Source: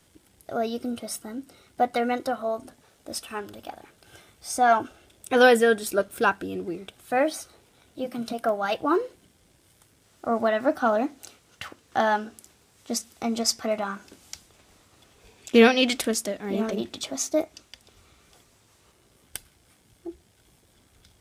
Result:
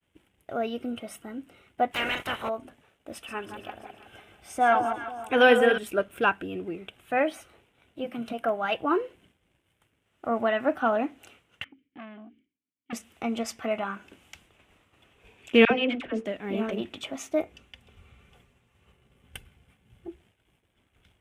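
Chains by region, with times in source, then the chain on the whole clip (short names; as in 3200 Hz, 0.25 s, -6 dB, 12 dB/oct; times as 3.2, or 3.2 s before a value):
1.91–2.48 spectral limiter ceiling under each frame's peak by 29 dB + hard clip -24 dBFS
3.12–5.78 reverse delay 0.113 s, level -9.5 dB + echo with dull and thin repeats by turns 0.165 s, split 1100 Hz, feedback 60%, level -7.5 dB
11.64–12.93 vowel filter i + tilt -3 dB/oct + core saturation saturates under 1700 Hz
15.65–16.26 tape spacing loss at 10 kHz 27 dB + notches 50/100/150/200/250/300/350/400/450/500 Hz + dispersion lows, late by 57 ms, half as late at 1000 Hz
17.42–20.08 low shelf 240 Hz +10.5 dB + notches 50/100/150/200/250/300/350/400/450/500 Hz + notch comb 320 Hz
whole clip: resonant high shelf 3600 Hz -8 dB, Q 3; expander -54 dBFS; gain -2.5 dB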